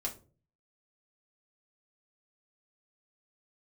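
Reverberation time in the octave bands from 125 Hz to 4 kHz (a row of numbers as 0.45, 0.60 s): 0.70, 0.55, 0.45, 0.30, 0.25, 0.20 s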